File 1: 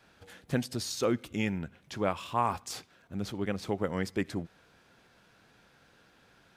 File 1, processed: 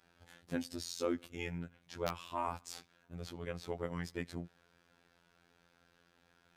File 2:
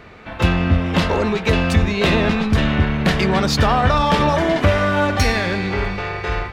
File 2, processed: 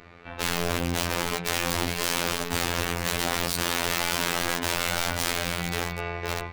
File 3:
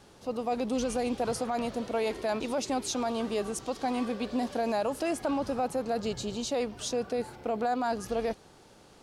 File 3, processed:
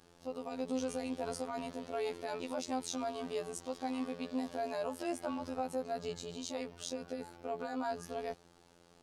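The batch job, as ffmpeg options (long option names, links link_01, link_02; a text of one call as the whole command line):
ffmpeg -i in.wav -af "acontrast=55,aeval=exprs='(mod(2.66*val(0)+1,2)-1)/2.66':channel_layout=same,afftfilt=real='hypot(re,im)*cos(PI*b)':imag='0':win_size=2048:overlap=0.75,volume=-10.5dB" out.wav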